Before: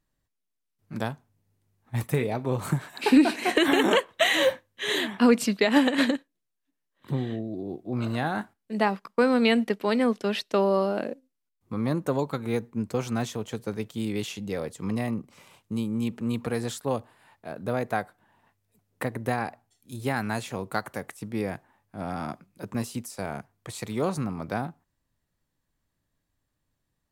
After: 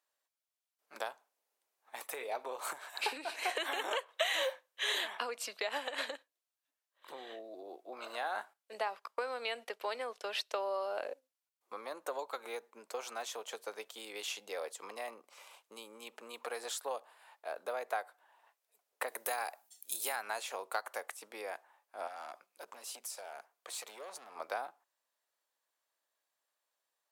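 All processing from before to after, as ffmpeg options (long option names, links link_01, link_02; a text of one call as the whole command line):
ffmpeg -i in.wav -filter_complex "[0:a]asettb=1/sr,asplit=3[link_01][link_02][link_03];[link_01]atrim=end=19.084[link_04];[link_02]atrim=start=19.08:end=20.16,asetpts=PTS-STARTPTS,afade=type=in:duration=0.004:curve=qsin,afade=type=out:start_time=1.076:duration=0.004:curve=qsin,aemphasis=mode=production:type=75kf,aeval=exprs='val(0)+0.00158*(sin(2*PI*50*n/s)+sin(2*PI*2*50*n/s)/2+sin(2*PI*3*50*n/s)/3+sin(2*PI*4*50*n/s)/4+sin(2*PI*5*50*n/s)/5)':channel_layout=same[link_05];[link_03]atrim=start=20.156[link_06];[link_04][link_05]acrossfade=duration=0.004:curve1=hsin:curve2=qsin[link_07];[link_07][link_06]acrossfade=duration=0.004:curve1=qsin:curve2=hsin,asettb=1/sr,asplit=3[link_08][link_09][link_10];[link_08]atrim=end=22.074[link_11];[link_09]atrim=start=22.07:end=24.36,asetpts=PTS-STARTPTS,afade=type=in:duration=0.004:curve=qsin,afade=type=out:start_time=2.286:duration=0.004:curve=qsin,acompressor=threshold=-34dB:ratio=6:attack=3.2:release=140:knee=1:detection=peak,asoftclip=type=hard:threshold=-35dB[link_12];[link_10]atrim=start=24.356[link_13];[link_11][link_12]acrossfade=duration=0.004:curve1=hsin:curve2=qsin[link_14];[link_14][link_13]acrossfade=duration=0.004:curve1=qsin:curve2=hsin,equalizer=frequency=1900:width_type=o:width=0.31:gain=-3,acompressor=threshold=-28dB:ratio=6,highpass=frequency=540:width=0.5412,highpass=frequency=540:width=1.3066,volume=-1dB" out.wav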